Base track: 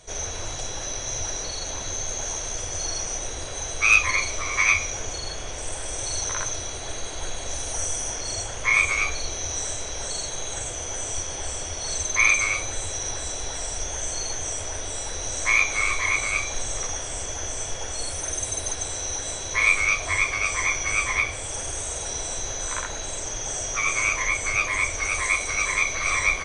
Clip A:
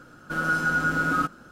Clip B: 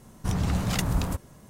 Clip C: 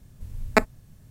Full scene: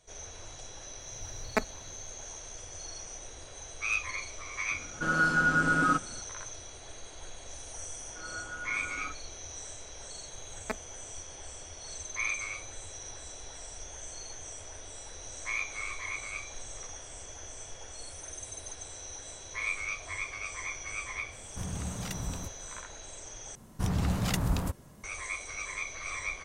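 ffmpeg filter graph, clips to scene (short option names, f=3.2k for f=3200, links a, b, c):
-filter_complex "[3:a]asplit=2[a][b];[1:a]asplit=2[c][d];[2:a]asplit=2[e][f];[0:a]volume=-14dB[g];[c]aresample=22050,aresample=44100[h];[d]acrossover=split=290 2700:gain=0.178 1 0.0631[i][j][k];[i][j][k]amix=inputs=3:normalize=0[l];[g]asplit=2[m][n];[m]atrim=end=23.554[o];[f]atrim=end=1.49,asetpts=PTS-STARTPTS,volume=-3dB[p];[n]atrim=start=25.036[q];[a]atrim=end=1.1,asetpts=PTS-STARTPTS,volume=-9.5dB,afade=t=in:d=0.004:c=hsin,afade=t=out:st=1.096:d=0.004:c=hsin,adelay=1000[r];[h]atrim=end=1.51,asetpts=PTS-STARTPTS,volume=-1.5dB,afade=t=in:d=0.004:c=hsin,afade=t=out:st=1.506:d=0.004:c=hsin,adelay=4710[s];[l]atrim=end=1.51,asetpts=PTS-STARTPTS,volume=-16.5dB,afade=t=in:d=0.004:c=hsin,afade=t=out:st=1.506:d=0.004:c=hsin,adelay=346626S[t];[b]atrim=end=1.1,asetpts=PTS-STARTPTS,volume=-17dB,afade=t=in:d=0.004:c=hsin,afade=t=out:st=1.096:d=0.004:c=hsin,adelay=10130[u];[e]atrim=end=1.49,asetpts=PTS-STARTPTS,volume=-11dB,afade=t=in:d=0.004:c=hsin,afade=t=out:st=1.486:d=0.004:c=hsin,adelay=940212S[v];[o][p]acrossfade=d=0.004:c1=hsin:c2=hsin[w];[w][q]acrossfade=d=0.004:c1=hsin:c2=hsin[x];[x][r][s][t][u][v]amix=inputs=6:normalize=0"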